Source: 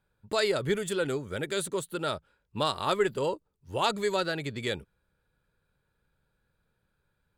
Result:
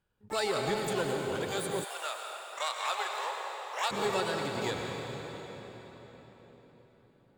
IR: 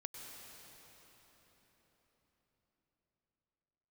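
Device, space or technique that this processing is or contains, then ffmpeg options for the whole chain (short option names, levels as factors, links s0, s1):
shimmer-style reverb: -filter_complex "[0:a]asplit=2[s0][s1];[s1]asetrate=88200,aresample=44100,atempo=0.5,volume=0.447[s2];[s0][s2]amix=inputs=2:normalize=0[s3];[1:a]atrim=start_sample=2205[s4];[s3][s4]afir=irnorm=-1:irlink=0,asplit=3[s5][s6][s7];[s5]afade=t=out:st=1.83:d=0.02[s8];[s6]highpass=f=650:w=0.5412,highpass=f=650:w=1.3066,afade=t=in:st=1.83:d=0.02,afade=t=out:st=3.9:d=0.02[s9];[s7]afade=t=in:st=3.9:d=0.02[s10];[s8][s9][s10]amix=inputs=3:normalize=0"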